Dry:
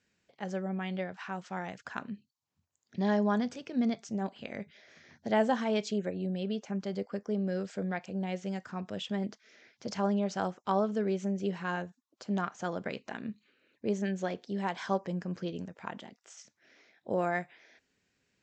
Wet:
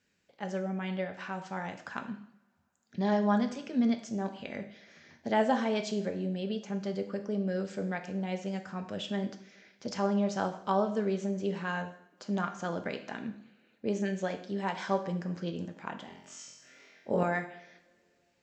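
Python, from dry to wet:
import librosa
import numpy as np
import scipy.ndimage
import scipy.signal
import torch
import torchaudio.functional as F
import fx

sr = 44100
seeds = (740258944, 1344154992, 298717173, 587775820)

y = fx.room_flutter(x, sr, wall_m=3.9, rt60_s=0.78, at=(16.06, 17.23))
y = fx.rev_double_slope(y, sr, seeds[0], early_s=0.63, late_s=2.9, knee_db=-28, drr_db=6.0)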